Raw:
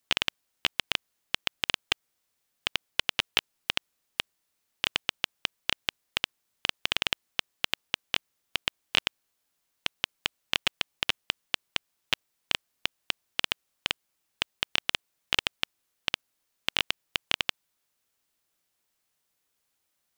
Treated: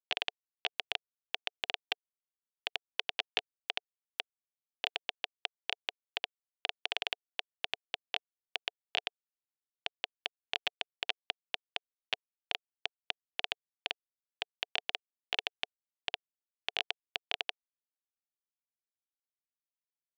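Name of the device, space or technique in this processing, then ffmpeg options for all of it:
hand-held game console: -af "acrusher=bits=3:mix=0:aa=0.000001,highpass=420,equalizer=f=440:t=q:w=4:g=6,equalizer=f=720:t=q:w=4:g=10,equalizer=f=1.3k:t=q:w=4:g=-8,lowpass=f=5.2k:w=0.5412,lowpass=f=5.2k:w=1.3066,volume=-7dB"

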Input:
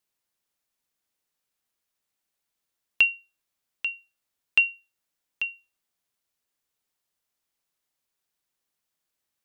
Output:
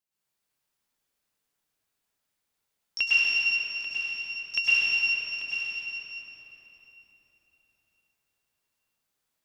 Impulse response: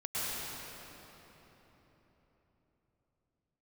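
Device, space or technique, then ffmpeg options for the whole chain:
shimmer-style reverb: -filter_complex "[0:a]asplit=2[a][b];[b]asetrate=88200,aresample=44100,atempo=0.5,volume=-8dB[c];[a][c]amix=inputs=2:normalize=0[d];[1:a]atrim=start_sample=2205[e];[d][e]afir=irnorm=-1:irlink=0,asettb=1/sr,asplit=3[f][g][h];[f]atrim=end=3.024[i];[g]atrim=start=3.02:end=3.9,asetpts=PTS-STARTPTS,afade=t=in:d=0.004:c=qsin,afade=t=out:st=0.876:d=0.004:c=qsin,highpass=f=120:p=1[j];[h]atrim=start=3.896[k];[i][j]acrossfade=d=0.004:c1=hsin:c2=qsin[l];[l][k]acrossfade=d=0.004:c1=qsin:c2=hsin,volume=-3.5dB"

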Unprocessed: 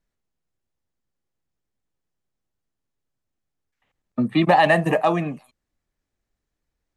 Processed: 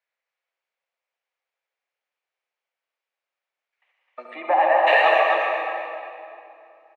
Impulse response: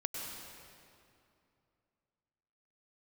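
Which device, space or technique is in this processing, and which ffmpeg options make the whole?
station announcement: -filter_complex "[0:a]highpass=440,lowpass=4.1k,equalizer=f=2.3k:t=o:w=0.57:g=8,aecho=1:1:69.97|259.5:0.398|0.631[a];[1:a]atrim=start_sample=2205[b];[a][b]afir=irnorm=-1:irlink=0,asplit=3[c][d][e];[c]afade=t=out:st=4.34:d=0.02[f];[d]lowpass=1.1k,afade=t=in:st=4.34:d=0.02,afade=t=out:st=4.86:d=0.02[g];[e]afade=t=in:st=4.86:d=0.02[h];[f][g][h]amix=inputs=3:normalize=0,highpass=f=510:w=0.5412,highpass=f=510:w=1.3066"

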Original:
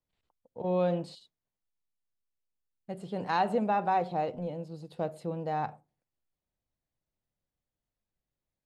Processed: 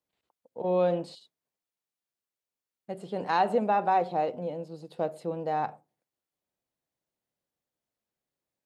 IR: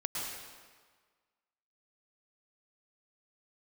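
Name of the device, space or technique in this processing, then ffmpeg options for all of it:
filter by subtraction: -filter_complex "[0:a]asplit=2[a][b];[b]lowpass=390,volume=-1[c];[a][c]amix=inputs=2:normalize=0,volume=1.5dB"

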